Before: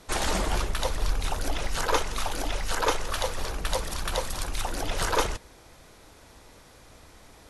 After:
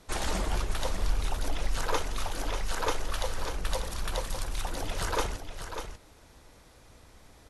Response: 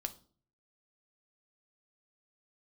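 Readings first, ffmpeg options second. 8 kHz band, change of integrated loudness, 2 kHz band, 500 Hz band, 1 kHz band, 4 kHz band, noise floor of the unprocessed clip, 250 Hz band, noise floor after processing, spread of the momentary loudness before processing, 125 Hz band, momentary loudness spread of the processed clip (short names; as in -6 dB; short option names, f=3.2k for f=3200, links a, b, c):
-5.0 dB, -4.5 dB, -5.0 dB, -4.5 dB, -5.0 dB, -5.0 dB, -53 dBFS, -3.5 dB, -56 dBFS, 5 LU, -1.5 dB, 8 LU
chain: -af "lowshelf=f=180:g=4,aecho=1:1:593:0.376,volume=-5.5dB"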